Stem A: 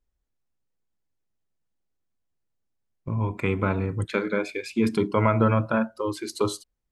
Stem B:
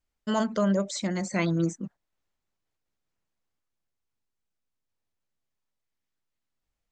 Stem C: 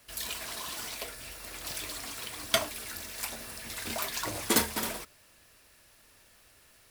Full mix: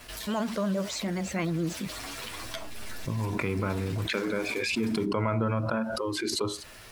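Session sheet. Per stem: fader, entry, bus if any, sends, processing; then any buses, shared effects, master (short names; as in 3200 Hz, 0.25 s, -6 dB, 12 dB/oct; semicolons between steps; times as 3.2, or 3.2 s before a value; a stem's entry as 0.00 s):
-9.0 dB, 0.00 s, no send, backwards sustainer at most 33 dB/s
-6.5 dB, 0.00 s, no send, vibrato 9.5 Hz 69 cents
-5.0 dB, 0.00 s, no send, compressor 6:1, threshold -36 dBFS, peak gain reduction 15.5 dB; endless flanger 9.5 ms +2.1 Hz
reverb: off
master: high shelf 6700 Hz -9.5 dB; fast leveller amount 50%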